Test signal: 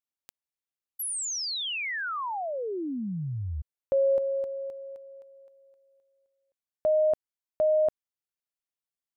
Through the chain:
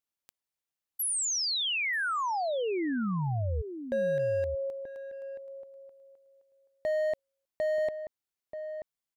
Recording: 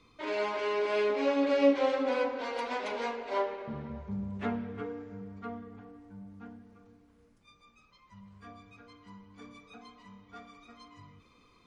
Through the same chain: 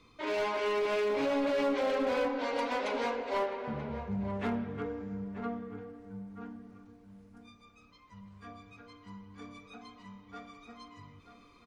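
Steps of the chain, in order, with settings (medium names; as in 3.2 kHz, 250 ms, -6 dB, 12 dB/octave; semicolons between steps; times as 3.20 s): in parallel at -2 dB: compressor with a negative ratio -29 dBFS, ratio -0.5; on the sum: hard clipper -22 dBFS; echo from a far wall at 160 m, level -9 dB; trim -4.5 dB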